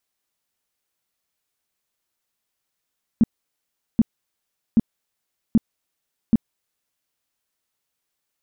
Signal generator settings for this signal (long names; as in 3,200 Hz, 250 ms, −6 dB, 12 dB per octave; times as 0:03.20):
tone bursts 226 Hz, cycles 6, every 0.78 s, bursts 5, −10 dBFS